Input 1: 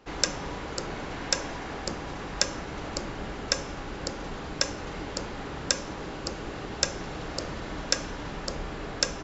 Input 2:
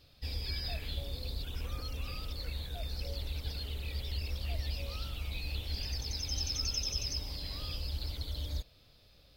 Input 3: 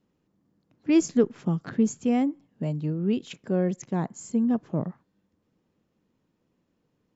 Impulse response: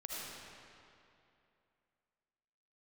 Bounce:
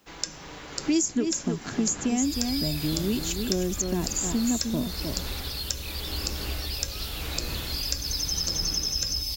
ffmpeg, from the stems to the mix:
-filter_complex "[0:a]dynaudnorm=framelen=230:gausssize=3:maxgain=11.5dB,flanger=delay=6:depth=4:regen=71:speed=0.23:shape=sinusoidal,volume=-5.5dB[link_01];[1:a]adynamicequalizer=threshold=0.00316:dfrequency=6600:dqfactor=0.7:tfrequency=6600:tqfactor=0.7:attack=5:release=100:ratio=0.375:range=3.5:mode=boostabove:tftype=highshelf,adelay=2000,volume=-0.5dB,asplit=2[link_02][link_03];[link_03]volume=-4.5dB[link_04];[2:a]aecho=1:1:3:0.44,aexciter=amount=2.1:drive=7:freq=5900,volume=3dB,asplit=2[link_05][link_06];[link_06]volume=-8dB[link_07];[3:a]atrim=start_sample=2205[link_08];[link_04][link_08]afir=irnorm=-1:irlink=0[link_09];[link_07]aecho=0:1:308:1[link_10];[link_01][link_02][link_05][link_09][link_10]amix=inputs=5:normalize=0,highshelf=frequency=2100:gain=11,acrossover=split=350|4900[link_11][link_12][link_13];[link_11]acompressor=threshold=-25dB:ratio=4[link_14];[link_12]acompressor=threshold=-36dB:ratio=4[link_15];[link_13]acompressor=threshold=-29dB:ratio=4[link_16];[link_14][link_15][link_16]amix=inputs=3:normalize=0"

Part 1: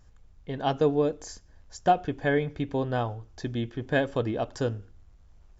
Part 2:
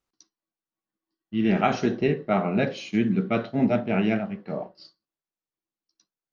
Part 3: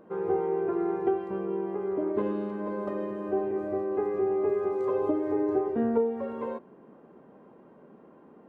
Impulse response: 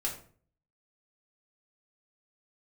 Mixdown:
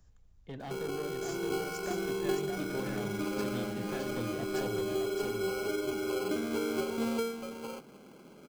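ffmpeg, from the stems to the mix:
-filter_complex "[0:a]highshelf=frequency=5000:gain=8.5,acrossover=split=90|260[link_01][link_02][link_03];[link_01]acompressor=threshold=-52dB:ratio=4[link_04];[link_02]acompressor=threshold=-37dB:ratio=4[link_05];[link_03]acompressor=threshold=-30dB:ratio=4[link_06];[link_04][link_05][link_06]amix=inputs=3:normalize=0,asoftclip=type=hard:threshold=-29.5dB,volume=-9.5dB,asplit=2[link_07][link_08];[link_08]volume=-3.5dB[link_09];[1:a]adelay=2300,volume=-18.5dB[link_10];[2:a]acrusher=samples=24:mix=1:aa=0.000001,adelay=600,volume=-3dB,asplit=2[link_11][link_12];[link_12]volume=-7dB[link_13];[link_10][link_11]amix=inputs=2:normalize=0,alimiter=level_in=9dB:limit=-24dB:level=0:latency=1:release=142,volume=-9dB,volume=0dB[link_14];[link_09][link_13]amix=inputs=2:normalize=0,aecho=0:1:618:1[link_15];[link_07][link_14][link_15]amix=inputs=3:normalize=0,lowshelf=frequency=350:gain=5"

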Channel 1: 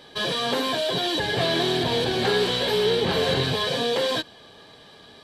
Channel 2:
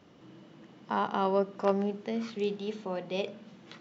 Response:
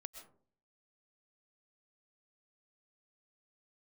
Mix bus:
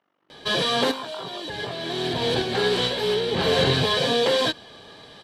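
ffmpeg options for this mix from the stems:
-filter_complex "[0:a]lowpass=11000,adelay=300,volume=3dB[link_01];[1:a]tremolo=f=48:d=0.889,bandpass=frequency=1300:width_type=q:width=0.96:csg=0,volume=-4dB,asplit=2[link_02][link_03];[link_03]apad=whole_len=244200[link_04];[link_01][link_04]sidechaincompress=threshold=-50dB:ratio=4:attack=33:release=510[link_05];[link_05][link_02]amix=inputs=2:normalize=0"

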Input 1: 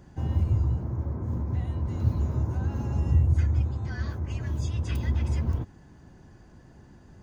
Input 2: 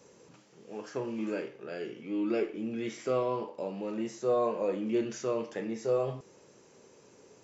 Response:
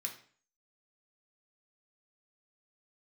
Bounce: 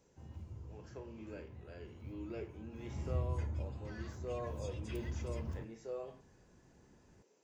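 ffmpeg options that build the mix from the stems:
-filter_complex "[0:a]volume=-12dB,afade=type=in:start_time=2.71:duration=0.33:silence=0.334965,asplit=2[link_01][link_02];[link_02]volume=-7.5dB[link_03];[1:a]highpass=220,bandreject=frequency=1200:width=16,volume=-14dB[link_04];[2:a]atrim=start_sample=2205[link_05];[link_03][link_05]afir=irnorm=-1:irlink=0[link_06];[link_01][link_04][link_06]amix=inputs=3:normalize=0"

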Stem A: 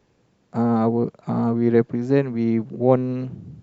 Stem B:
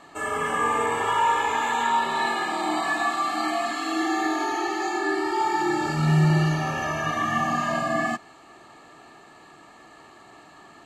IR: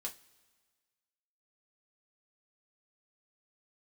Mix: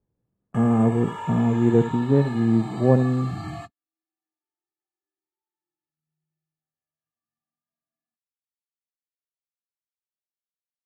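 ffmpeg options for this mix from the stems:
-filter_complex "[0:a]lowpass=1300,volume=-5dB,asplit=3[link_01][link_02][link_03];[link_02]volume=-13dB[link_04];[1:a]volume=-13.5dB[link_05];[link_03]apad=whole_len=478551[link_06];[link_05][link_06]sidechaingate=range=-45dB:threshold=-52dB:ratio=16:detection=peak[link_07];[link_04]aecho=0:1:71:1[link_08];[link_01][link_07][link_08]amix=inputs=3:normalize=0,agate=range=-17dB:threshold=-45dB:ratio=16:detection=peak,lowshelf=frequency=220:gain=12"

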